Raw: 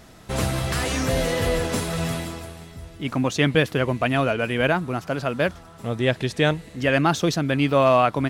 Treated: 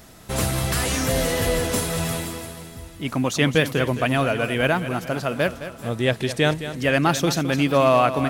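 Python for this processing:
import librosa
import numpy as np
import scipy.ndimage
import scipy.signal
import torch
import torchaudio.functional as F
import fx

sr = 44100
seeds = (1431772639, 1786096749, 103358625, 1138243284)

y = fx.high_shelf(x, sr, hz=8600.0, db=11.5)
y = fx.echo_feedback(y, sr, ms=214, feedback_pct=50, wet_db=-12.0)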